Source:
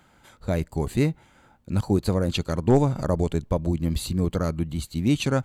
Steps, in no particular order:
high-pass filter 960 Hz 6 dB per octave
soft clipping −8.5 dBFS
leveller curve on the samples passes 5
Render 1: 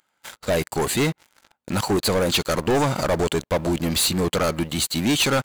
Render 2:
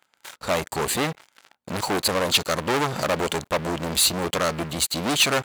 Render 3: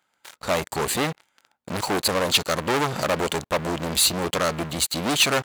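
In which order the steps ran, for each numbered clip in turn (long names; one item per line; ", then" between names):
soft clipping, then high-pass filter, then leveller curve on the samples
soft clipping, then leveller curve on the samples, then high-pass filter
leveller curve on the samples, then soft clipping, then high-pass filter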